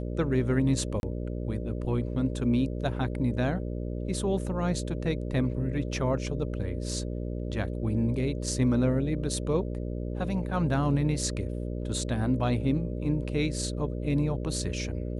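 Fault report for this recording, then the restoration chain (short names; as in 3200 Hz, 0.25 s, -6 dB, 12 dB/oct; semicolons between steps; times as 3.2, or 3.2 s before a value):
buzz 60 Hz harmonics 10 -33 dBFS
1–1.03 gap 31 ms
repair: de-hum 60 Hz, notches 10; interpolate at 1, 31 ms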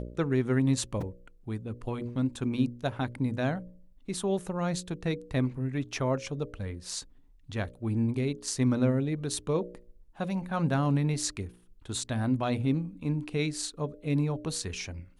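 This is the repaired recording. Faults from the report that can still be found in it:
none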